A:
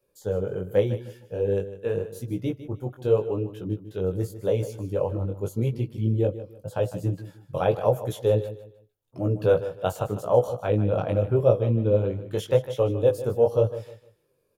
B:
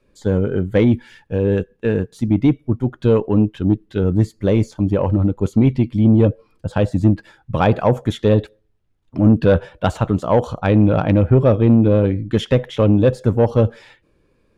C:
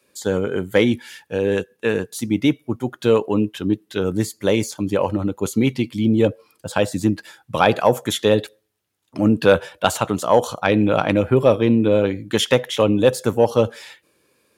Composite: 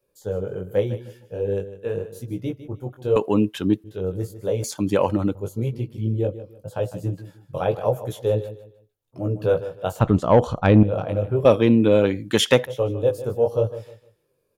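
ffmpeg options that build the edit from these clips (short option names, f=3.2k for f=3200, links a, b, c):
-filter_complex "[2:a]asplit=3[a][b][c];[0:a]asplit=5[d][e][f][g][h];[d]atrim=end=3.162[i];[a]atrim=start=3.158:end=3.842[j];[e]atrim=start=3.838:end=4.642[k];[b]atrim=start=4.638:end=5.352[l];[f]atrim=start=5.348:end=10.002[m];[1:a]atrim=start=9.998:end=10.832[n];[g]atrim=start=10.828:end=11.452[o];[c]atrim=start=11.448:end=12.662[p];[h]atrim=start=12.658[q];[i][j]acrossfade=d=0.004:c1=hsin:c2=hsin[r];[r][k]acrossfade=d=0.004:c1=hsin:c2=hsin[s];[s][l]acrossfade=d=0.004:c1=hsin:c2=hsin[t];[t][m]acrossfade=d=0.004:c1=hsin:c2=hsin[u];[u][n]acrossfade=d=0.004:c1=hsin:c2=hsin[v];[v][o]acrossfade=d=0.004:c1=hsin:c2=hsin[w];[w][p]acrossfade=d=0.004:c1=hsin:c2=hsin[x];[x][q]acrossfade=d=0.004:c1=hsin:c2=hsin"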